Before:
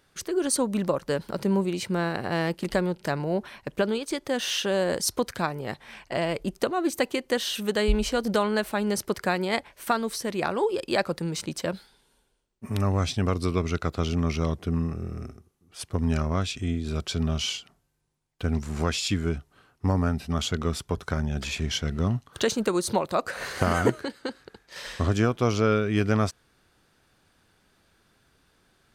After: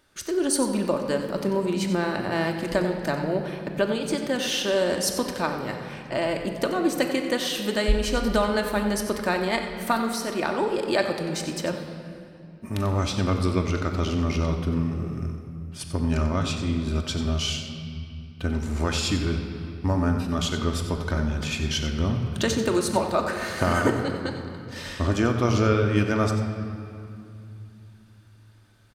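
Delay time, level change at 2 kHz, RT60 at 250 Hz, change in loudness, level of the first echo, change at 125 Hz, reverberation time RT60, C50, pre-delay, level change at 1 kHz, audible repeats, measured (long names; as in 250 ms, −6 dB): 92 ms, +2.0 dB, 3.8 s, +1.5 dB, −11.0 dB, +1.5 dB, 2.6 s, 5.5 dB, 3 ms, +1.5 dB, 1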